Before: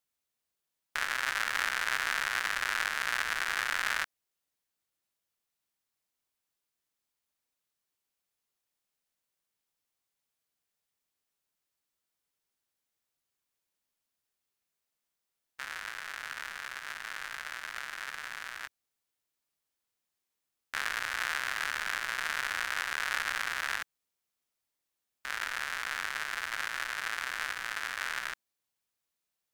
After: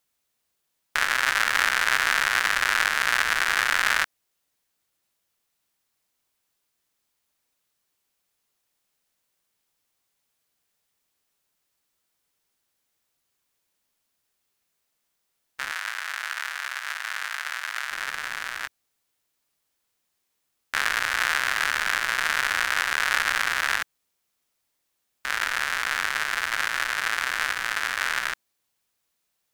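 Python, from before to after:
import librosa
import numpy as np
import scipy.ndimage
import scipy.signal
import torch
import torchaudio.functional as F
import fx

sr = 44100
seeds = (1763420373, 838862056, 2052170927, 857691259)

y = fx.highpass(x, sr, hz=720.0, slope=12, at=(15.71, 17.91))
y = y * 10.0 ** (9.0 / 20.0)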